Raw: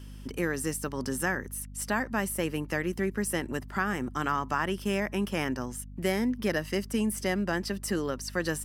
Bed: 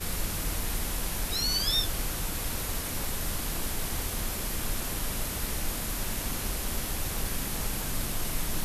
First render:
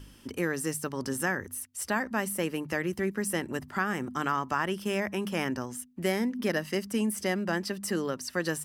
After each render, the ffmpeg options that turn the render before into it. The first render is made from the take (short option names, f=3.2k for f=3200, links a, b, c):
-af "bandreject=f=50:t=h:w=4,bandreject=f=100:t=h:w=4,bandreject=f=150:t=h:w=4,bandreject=f=200:t=h:w=4,bandreject=f=250:t=h:w=4"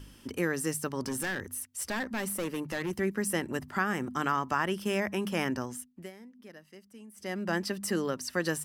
-filter_complex "[0:a]asettb=1/sr,asplit=3[a][b][c];[a]atrim=end=1.014[d];[b]atrim=start=1.01:end=2.91,asetpts=PTS-STARTPTS,afade=t=in:d=0.004:c=qsin,afade=t=out:st=1.896:d=0.004:c=qsin,volume=28.5dB,asoftclip=hard,volume=-28.5dB[e];[c]atrim=start=2.906[f];[d][e]acrossfade=d=0.004:c1=hsin:c2=qsin[g];[g][f]acrossfade=d=0.004:c1=qsin:c2=hsin,asplit=3[h][i][j];[h]atrim=end=6.11,asetpts=PTS-STARTPTS,afade=t=out:st=5.68:d=0.43:silence=0.0841395[k];[i]atrim=start=6.11:end=7.13,asetpts=PTS-STARTPTS,volume=-21.5dB[l];[j]atrim=start=7.13,asetpts=PTS-STARTPTS,afade=t=in:d=0.43:silence=0.0841395[m];[k][l][m]concat=n=3:v=0:a=1"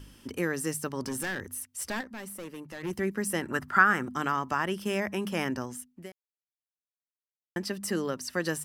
-filter_complex "[0:a]asettb=1/sr,asplit=3[a][b][c];[a]atrim=end=3.424[d];[b]atrim=start=3.42:end=4.03,asetpts=PTS-STARTPTS,afade=t=in:d=0.004:c=qsin,afade=t=out:st=0.606:d=0.004:c=qsin,equalizer=f=1.4k:t=o:w=0.7:g=13.5[e];[c]atrim=start=4.026[f];[d][e]acrossfade=d=0.004:c1=hsin:c2=qsin[g];[g][f]acrossfade=d=0.004:c1=qsin:c2=hsin,asplit=5[h][i][j][k][l];[h]atrim=end=2.012[m];[i]atrim=start=2.008:end=2.832,asetpts=PTS-STARTPTS,volume=-7.5dB[n];[j]atrim=start=2.828:end=6.12,asetpts=PTS-STARTPTS,afade=t=out:st=3.288:d=0.004:c=hsin[o];[k]atrim=start=6.12:end=7.56,asetpts=PTS-STARTPTS,volume=0[p];[l]atrim=start=7.56,asetpts=PTS-STARTPTS,afade=t=in:d=0.004:c=hsin[q];[m][n]acrossfade=d=0.004:c1=hsin:c2=hsin[r];[o][p][q]concat=n=3:v=0:a=1[s];[r][s]acrossfade=d=0.004:c1=hsin:c2=hsin"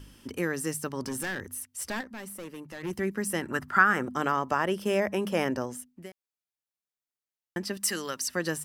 -filter_complex "[0:a]asettb=1/sr,asplit=3[a][b][c];[a]atrim=end=3.964[d];[b]atrim=start=3.96:end=5.89,asetpts=PTS-STARTPTS,afade=t=in:d=0.004:c=qsin,afade=t=out:st=1.926:d=0.004:c=qsin,equalizer=f=540:w=1.5:g=8[e];[c]atrim=start=5.886[f];[d][e]acrossfade=d=0.004:c1=hsin:c2=qsin[g];[g][f]acrossfade=d=0.004:c1=qsin:c2=hsin,asettb=1/sr,asplit=3[h][i][j];[h]atrim=end=7.774[k];[i]atrim=start=7.77:end=8.28,asetpts=PTS-STARTPTS,afade=t=in:d=0.004:c=qsin,afade=t=out:st=0.506:d=0.004:c=qsin,tiltshelf=f=970:g=-8.5[l];[j]atrim=start=8.276[m];[k][l]acrossfade=d=0.004:c1=hsin:c2=qsin[n];[n][m]acrossfade=d=0.004:c1=qsin:c2=hsin"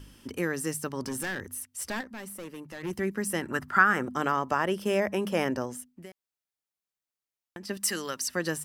-filter_complex "[0:a]asettb=1/sr,asplit=3[a][b][c];[a]atrim=end=5.944[d];[b]atrim=start=5.94:end=7.69,asetpts=PTS-STARTPTS,afade=t=in:d=0.004:c=qsin,afade=t=out:st=1.746:d=0.004:c=qsin,acompressor=threshold=-38dB:ratio=6:attack=3.2:release=140:knee=1:detection=peak[e];[c]atrim=start=7.686[f];[d][e]acrossfade=d=0.004:c1=hsin:c2=qsin[g];[g][f]acrossfade=d=0.004:c1=qsin:c2=hsin"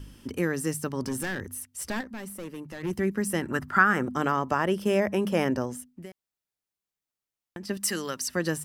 -af "lowshelf=f=340:g=6"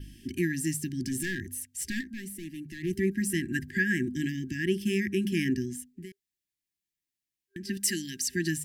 -af "adynamicequalizer=threshold=0.00316:dfrequency=7200:dqfactor=4.7:tfrequency=7200:tqfactor=4.7:attack=5:release=100:ratio=0.375:range=2:mode=boostabove:tftype=bell,afftfilt=real='re*(1-between(b*sr/4096,390,1600))':imag='im*(1-between(b*sr/4096,390,1600))':win_size=4096:overlap=0.75"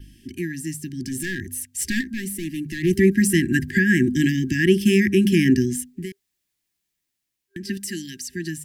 -filter_complex "[0:a]acrossover=split=400[a][b];[b]alimiter=level_in=0.5dB:limit=-24dB:level=0:latency=1:release=155,volume=-0.5dB[c];[a][c]amix=inputs=2:normalize=0,dynaudnorm=f=380:g=9:m=12dB"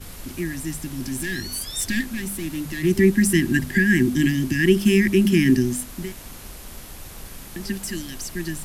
-filter_complex "[1:a]volume=-7dB[a];[0:a][a]amix=inputs=2:normalize=0"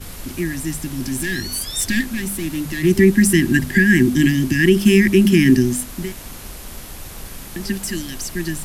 -af "volume=4.5dB,alimiter=limit=-3dB:level=0:latency=1"